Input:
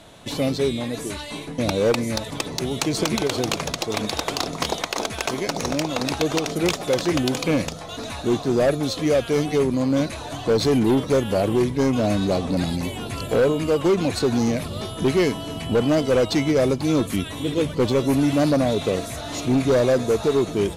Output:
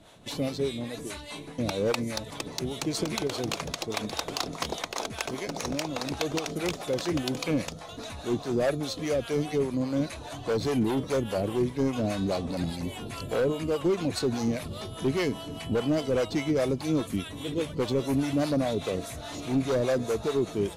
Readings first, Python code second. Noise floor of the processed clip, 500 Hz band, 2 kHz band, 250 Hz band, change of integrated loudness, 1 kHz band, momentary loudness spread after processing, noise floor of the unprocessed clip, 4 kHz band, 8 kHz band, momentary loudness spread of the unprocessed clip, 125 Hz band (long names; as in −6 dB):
−43 dBFS, −7.5 dB, −7.0 dB, −7.0 dB, −7.5 dB, −7.5 dB, 8 LU, −35 dBFS, −7.0 dB, −7.0 dB, 8 LU, −7.0 dB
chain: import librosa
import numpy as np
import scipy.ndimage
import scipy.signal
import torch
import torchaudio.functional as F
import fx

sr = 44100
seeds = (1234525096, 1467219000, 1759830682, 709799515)

y = fx.harmonic_tremolo(x, sr, hz=4.9, depth_pct=70, crossover_hz=500.0)
y = F.gain(torch.from_numpy(y), -4.0).numpy()